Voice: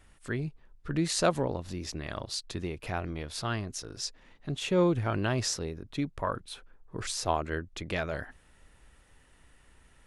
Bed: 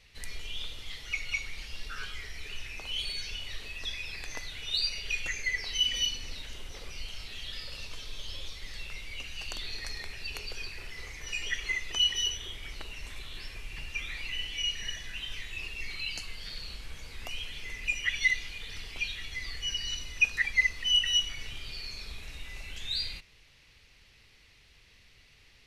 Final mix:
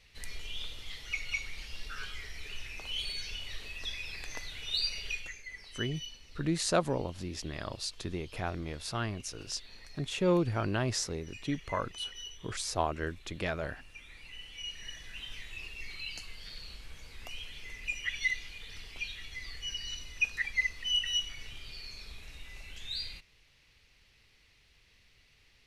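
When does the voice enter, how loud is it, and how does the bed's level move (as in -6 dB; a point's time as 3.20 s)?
5.50 s, -2.0 dB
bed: 5.06 s -2 dB
5.44 s -14.5 dB
14.09 s -14.5 dB
15.19 s -5 dB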